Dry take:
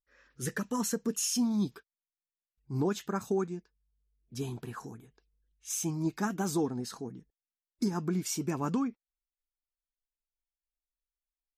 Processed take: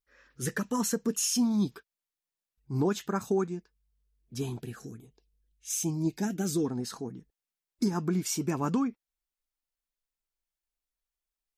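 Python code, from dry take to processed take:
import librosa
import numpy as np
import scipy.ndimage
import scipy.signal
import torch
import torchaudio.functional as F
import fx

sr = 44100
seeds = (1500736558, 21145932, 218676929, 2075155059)

y = fx.filter_lfo_notch(x, sr, shape='saw_down', hz=1.2, low_hz=800.0, high_hz=1700.0, q=0.77, at=(4.59, 6.64), fade=0.02)
y = y * 10.0 ** (2.5 / 20.0)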